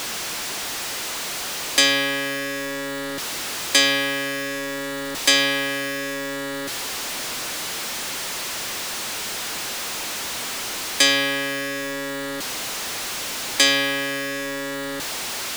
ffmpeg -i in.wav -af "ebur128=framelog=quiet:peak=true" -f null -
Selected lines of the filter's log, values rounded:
Integrated loudness:
  I:         -22.8 LUFS
  Threshold: -32.8 LUFS
Loudness range:
  LRA:         5.4 LU
  Threshold: -42.8 LUFS
  LRA low:   -26.3 LUFS
  LRA high:  -20.8 LUFS
True peak:
  Peak:       -3.8 dBFS